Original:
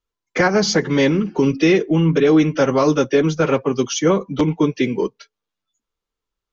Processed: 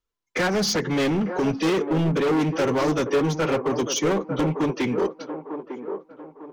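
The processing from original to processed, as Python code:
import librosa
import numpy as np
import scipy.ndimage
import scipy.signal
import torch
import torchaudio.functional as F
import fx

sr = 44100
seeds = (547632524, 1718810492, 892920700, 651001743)

p1 = np.clip(x, -10.0 ** (-17.5 / 20.0), 10.0 ** (-17.5 / 20.0))
p2 = p1 + fx.echo_wet_bandpass(p1, sr, ms=900, feedback_pct=37, hz=630.0, wet_db=-6.0, dry=0)
y = p2 * librosa.db_to_amplitude(-2.0)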